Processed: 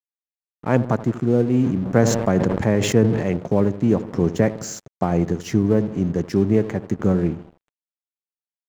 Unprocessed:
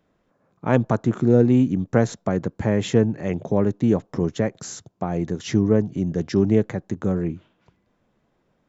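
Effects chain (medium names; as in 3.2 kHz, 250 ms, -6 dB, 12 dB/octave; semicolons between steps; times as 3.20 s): on a send: feedback echo behind a low-pass 80 ms, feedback 54%, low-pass 1.2 kHz, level -13.5 dB; on the sum: gain riding within 4 dB 0.5 s; peaking EQ 3.6 kHz -9 dB 0.28 oct; crossover distortion -41.5 dBFS; 1.48–3.37 s: decay stretcher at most 46 dB/s; trim +1.5 dB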